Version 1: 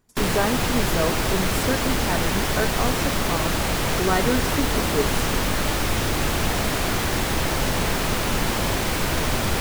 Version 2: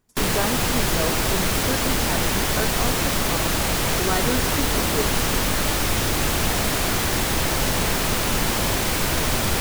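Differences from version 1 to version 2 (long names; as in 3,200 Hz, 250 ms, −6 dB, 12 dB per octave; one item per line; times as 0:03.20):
speech −3.0 dB
background: add high-shelf EQ 4,400 Hz +5.5 dB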